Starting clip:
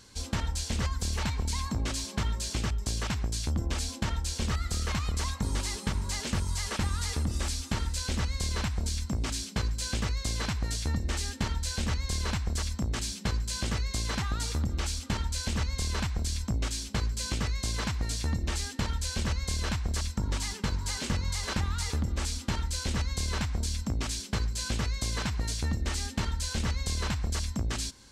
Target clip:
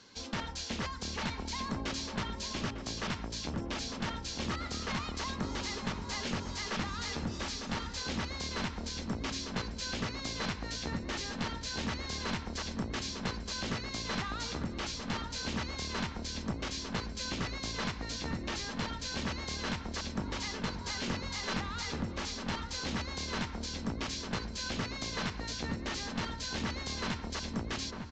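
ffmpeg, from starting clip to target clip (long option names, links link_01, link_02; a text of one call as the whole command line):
ffmpeg -i in.wav -filter_complex "[0:a]acrossover=split=150 6000:gain=0.158 1 0.178[link_01][link_02][link_03];[link_01][link_02][link_03]amix=inputs=3:normalize=0,aresample=16000,aeval=exprs='clip(val(0),-1,0.0224)':channel_layout=same,aresample=44100,asplit=2[link_04][link_05];[link_05]adelay=901,lowpass=frequency=1000:poles=1,volume=-5dB,asplit=2[link_06][link_07];[link_07]adelay=901,lowpass=frequency=1000:poles=1,volume=0.48,asplit=2[link_08][link_09];[link_09]adelay=901,lowpass=frequency=1000:poles=1,volume=0.48,asplit=2[link_10][link_11];[link_11]adelay=901,lowpass=frequency=1000:poles=1,volume=0.48,asplit=2[link_12][link_13];[link_13]adelay=901,lowpass=frequency=1000:poles=1,volume=0.48,asplit=2[link_14][link_15];[link_15]adelay=901,lowpass=frequency=1000:poles=1,volume=0.48[link_16];[link_04][link_06][link_08][link_10][link_12][link_14][link_16]amix=inputs=7:normalize=0" out.wav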